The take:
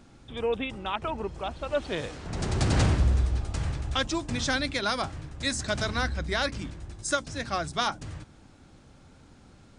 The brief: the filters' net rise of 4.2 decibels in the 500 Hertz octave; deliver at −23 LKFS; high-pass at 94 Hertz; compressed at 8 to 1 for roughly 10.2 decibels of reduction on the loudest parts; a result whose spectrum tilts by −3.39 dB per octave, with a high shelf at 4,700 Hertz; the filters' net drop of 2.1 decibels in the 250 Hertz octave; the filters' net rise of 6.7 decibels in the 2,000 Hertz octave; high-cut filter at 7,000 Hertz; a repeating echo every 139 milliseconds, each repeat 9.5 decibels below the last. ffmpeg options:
ffmpeg -i in.wav -af "highpass=94,lowpass=7000,equalizer=frequency=250:width_type=o:gain=-4.5,equalizer=frequency=500:width_type=o:gain=5.5,equalizer=frequency=2000:width_type=o:gain=7.5,highshelf=frequency=4700:gain=8,acompressor=threshold=-28dB:ratio=8,aecho=1:1:139|278|417|556:0.335|0.111|0.0365|0.012,volume=9.5dB" out.wav

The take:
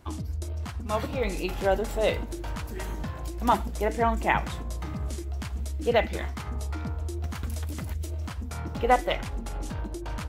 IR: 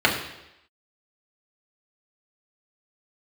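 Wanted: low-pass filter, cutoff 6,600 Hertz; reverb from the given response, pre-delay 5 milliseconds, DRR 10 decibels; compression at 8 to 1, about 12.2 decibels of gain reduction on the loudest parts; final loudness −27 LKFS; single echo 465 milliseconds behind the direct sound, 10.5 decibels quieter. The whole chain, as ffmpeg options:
-filter_complex "[0:a]lowpass=6600,acompressor=threshold=-29dB:ratio=8,aecho=1:1:465:0.299,asplit=2[link_01][link_02];[1:a]atrim=start_sample=2205,adelay=5[link_03];[link_02][link_03]afir=irnorm=-1:irlink=0,volume=-29.5dB[link_04];[link_01][link_04]amix=inputs=2:normalize=0,volume=7.5dB"

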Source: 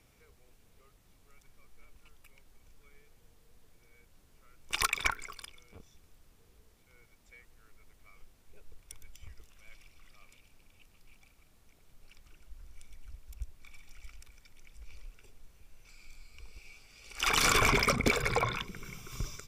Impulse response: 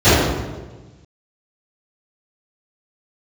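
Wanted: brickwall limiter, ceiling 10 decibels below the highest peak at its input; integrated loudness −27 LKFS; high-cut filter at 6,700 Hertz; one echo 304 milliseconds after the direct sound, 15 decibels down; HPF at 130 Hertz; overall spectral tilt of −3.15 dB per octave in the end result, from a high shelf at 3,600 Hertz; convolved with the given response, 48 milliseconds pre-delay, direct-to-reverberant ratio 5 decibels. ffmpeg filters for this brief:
-filter_complex "[0:a]highpass=130,lowpass=6700,highshelf=frequency=3600:gain=5,alimiter=limit=-23dB:level=0:latency=1,aecho=1:1:304:0.178,asplit=2[link_01][link_02];[1:a]atrim=start_sample=2205,adelay=48[link_03];[link_02][link_03]afir=irnorm=-1:irlink=0,volume=-35dB[link_04];[link_01][link_04]amix=inputs=2:normalize=0,volume=6.5dB"

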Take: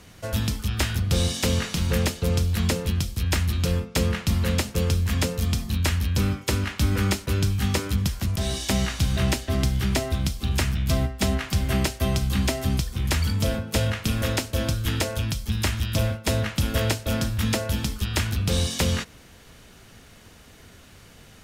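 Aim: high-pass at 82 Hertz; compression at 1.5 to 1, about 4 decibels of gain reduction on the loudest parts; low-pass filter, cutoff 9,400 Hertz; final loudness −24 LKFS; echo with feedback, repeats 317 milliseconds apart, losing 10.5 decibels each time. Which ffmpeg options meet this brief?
ffmpeg -i in.wav -af "highpass=82,lowpass=9400,acompressor=threshold=-31dB:ratio=1.5,aecho=1:1:317|634|951:0.299|0.0896|0.0269,volume=5.5dB" out.wav

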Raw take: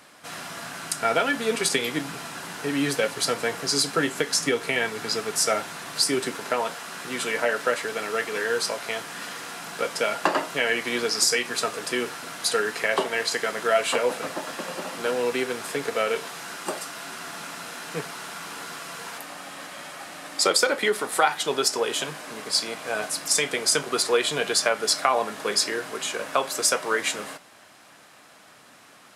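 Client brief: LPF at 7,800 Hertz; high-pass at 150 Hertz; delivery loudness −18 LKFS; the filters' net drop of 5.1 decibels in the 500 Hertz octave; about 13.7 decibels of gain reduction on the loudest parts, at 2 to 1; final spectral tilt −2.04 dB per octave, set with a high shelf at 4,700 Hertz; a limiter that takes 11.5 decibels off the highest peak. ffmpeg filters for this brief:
ffmpeg -i in.wav -af "highpass=150,lowpass=7800,equalizer=frequency=500:width_type=o:gain=-6,highshelf=frequency=4700:gain=-7.5,acompressor=threshold=-44dB:ratio=2,volume=22.5dB,alimiter=limit=-6dB:level=0:latency=1" out.wav

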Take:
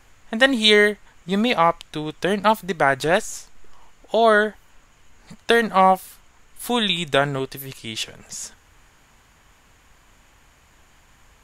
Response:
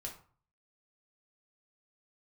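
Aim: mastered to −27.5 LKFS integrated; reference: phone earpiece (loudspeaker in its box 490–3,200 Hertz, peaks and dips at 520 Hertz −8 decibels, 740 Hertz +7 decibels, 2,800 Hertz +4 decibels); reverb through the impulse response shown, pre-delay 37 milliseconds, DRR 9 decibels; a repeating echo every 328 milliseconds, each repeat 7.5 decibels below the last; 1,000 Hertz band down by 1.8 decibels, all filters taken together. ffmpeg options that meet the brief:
-filter_complex "[0:a]equalizer=frequency=1000:width_type=o:gain=-7,aecho=1:1:328|656|984|1312|1640:0.422|0.177|0.0744|0.0312|0.0131,asplit=2[link_01][link_02];[1:a]atrim=start_sample=2205,adelay=37[link_03];[link_02][link_03]afir=irnorm=-1:irlink=0,volume=-7dB[link_04];[link_01][link_04]amix=inputs=2:normalize=0,highpass=490,equalizer=frequency=520:width_type=q:width=4:gain=-8,equalizer=frequency=740:width_type=q:width=4:gain=7,equalizer=frequency=2800:width_type=q:width=4:gain=4,lowpass=frequency=3200:width=0.5412,lowpass=frequency=3200:width=1.3066,volume=-5.5dB"

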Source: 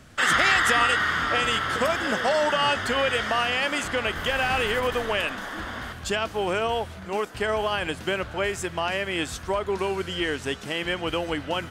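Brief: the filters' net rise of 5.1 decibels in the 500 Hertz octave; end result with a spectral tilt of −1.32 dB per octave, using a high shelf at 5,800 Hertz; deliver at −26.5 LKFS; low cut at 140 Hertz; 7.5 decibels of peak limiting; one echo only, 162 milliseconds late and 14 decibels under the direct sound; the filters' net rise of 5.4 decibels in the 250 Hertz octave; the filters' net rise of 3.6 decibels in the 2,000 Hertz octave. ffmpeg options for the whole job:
ffmpeg -i in.wav -af "highpass=140,equalizer=frequency=250:width_type=o:gain=6,equalizer=frequency=500:width_type=o:gain=4.5,equalizer=frequency=2000:width_type=o:gain=4.5,highshelf=frequency=5800:gain=-3.5,alimiter=limit=-12.5dB:level=0:latency=1,aecho=1:1:162:0.2,volume=-4dB" out.wav

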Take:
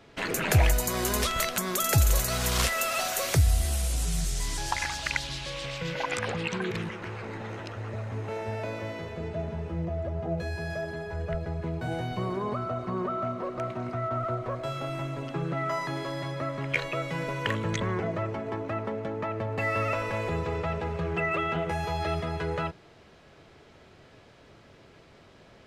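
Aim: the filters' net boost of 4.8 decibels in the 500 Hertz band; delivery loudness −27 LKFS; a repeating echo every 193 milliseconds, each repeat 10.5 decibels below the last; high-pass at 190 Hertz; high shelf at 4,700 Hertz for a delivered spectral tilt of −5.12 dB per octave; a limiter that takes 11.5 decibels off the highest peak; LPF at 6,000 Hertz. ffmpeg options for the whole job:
ffmpeg -i in.wav -af "highpass=190,lowpass=6000,equalizer=frequency=500:width_type=o:gain=6.5,highshelf=frequency=4700:gain=-8,alimiter=limit=-22dB:level=0:latency=1,aecho=1:1:193|386|579:0.299|0.0896|0.0269,volume=4.5dB" out.wav

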